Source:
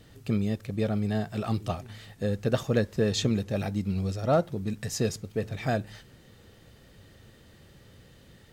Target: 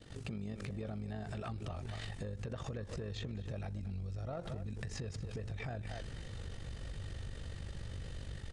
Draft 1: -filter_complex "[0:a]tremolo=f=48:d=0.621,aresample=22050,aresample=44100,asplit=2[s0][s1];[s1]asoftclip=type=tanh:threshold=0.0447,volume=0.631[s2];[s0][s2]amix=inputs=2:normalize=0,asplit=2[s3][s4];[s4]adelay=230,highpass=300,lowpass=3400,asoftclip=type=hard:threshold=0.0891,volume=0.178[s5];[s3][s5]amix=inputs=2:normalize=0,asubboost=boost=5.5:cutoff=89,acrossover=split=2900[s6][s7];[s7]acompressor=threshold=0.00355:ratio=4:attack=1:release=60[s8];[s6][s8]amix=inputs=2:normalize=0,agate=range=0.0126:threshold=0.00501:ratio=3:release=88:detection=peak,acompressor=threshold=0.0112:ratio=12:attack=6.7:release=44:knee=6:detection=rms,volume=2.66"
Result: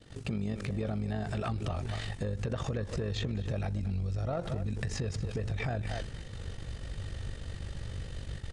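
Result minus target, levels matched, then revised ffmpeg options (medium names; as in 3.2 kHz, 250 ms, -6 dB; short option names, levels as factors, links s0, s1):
compression: peak gain reduction -8 dB
-filter_complex "[0:a]tremolo=f=48:d=0.621,aresample=22050,aresample=44100,asplit=2[s0][s1];[s1]asoftclip=type=tanh:threshold=0.0447,volume=0.631[s2];[s0][s2]amix=inputs=2:normalize=0,asplit=2[s3][s4];[s4]adelay=230,highpass=300,lowpass=3400,asoftclip=type=hard:threshold=0.0891,volume=0.178[s5];[s3][s5]amix=inputs=2:normalize=0,asubboost=boost=5.5:cutoff=89,acrossover=split=2900[s6][s7];[s7]acompressor=threshold=0.00355:ratio=4:attack=1:release=60[s8];[s6][s8]amix=inputs=2:normalize=0,agate=range=0.0126:threshold=0.00501:ratio=3:release=88:detection=peak,acompressor=threshold=0.00398:ratio=12:attack=6.7:release=44:knee=6:detection=rms,volume=2.66"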